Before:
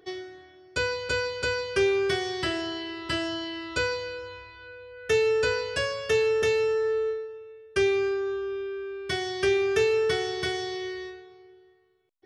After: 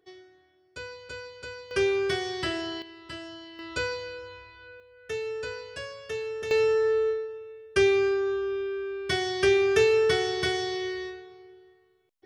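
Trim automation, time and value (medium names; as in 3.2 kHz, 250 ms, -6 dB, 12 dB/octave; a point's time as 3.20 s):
-12.5 dB
from 1.71 s -1.5 dB
from 2.82 s -11 dB
from 3.59 s -3 dB
from 4.80 s -10 dB
from 6.51 s +2 dB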